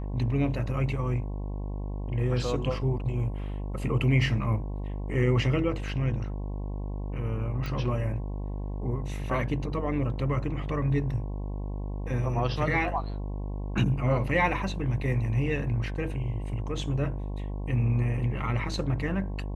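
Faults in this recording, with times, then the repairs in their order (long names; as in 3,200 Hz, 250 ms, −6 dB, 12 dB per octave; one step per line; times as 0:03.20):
mains buzz 50 Hz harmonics 22 −33 dBFS
0:07.66: click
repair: click removal
hum removal 50 Hz, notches 22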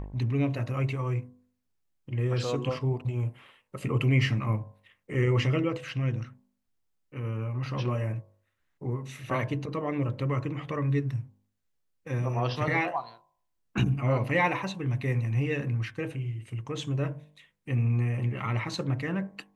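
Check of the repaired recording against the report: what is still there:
none of them is left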